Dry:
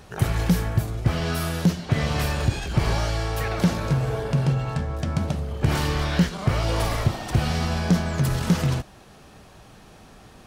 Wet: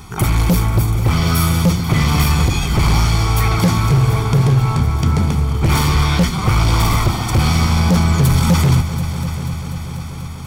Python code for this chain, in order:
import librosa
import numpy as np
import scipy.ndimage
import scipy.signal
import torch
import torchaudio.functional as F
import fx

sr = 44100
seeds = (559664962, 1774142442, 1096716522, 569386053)

p1 = fx.high_shelf(x, sr, hz=8900.0, db=6.5)
p2 = p1 + 0.9 * np.pad(p1, (int(0.9 * sr / 1000.0), 0))[:len(p1)]
p3 = np.clip(10.0 ** (16.5 / 20.0) * p2, -1.0, 1.0) / 10.0 ** (16.5 / 20.0)
p4 = p3 + fx.echo_heads(p3, sr, ms=244, heads='all three', feedback_pct=66, wet_db=-17.0, dry=0)
y = p4 * 10.0 ** (6.5 / 20.0)